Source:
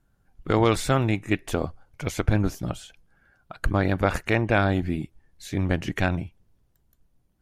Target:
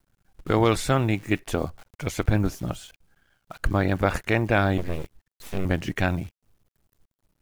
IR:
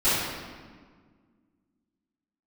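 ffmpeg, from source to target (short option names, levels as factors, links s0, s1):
-filter_complex "[0:a]acrusher=bits=9:dc=4:mix=0:aa=0.000001,asettb=1/sr,asplit=3[s0][s1][s2];[s0]atrim=end=4.784[s3];[s1]atrim=start=4.78:end=5.65,asetpts=PTS-STARTPTS,afade=t=in:d=0.004:c=qsin,afade=t=out:st=0.866:d=0.004:c=qsin,aeval=exprs='abs(val(0))':c=same[s4];[s2]atrim=start=5.646[s5];[s3][s4]acrossfade=d=0.004:c1=hsin:c2=qsin[s6];[s6][s5]acrossfade=d=0.004:c1=qsin:c2=hsin"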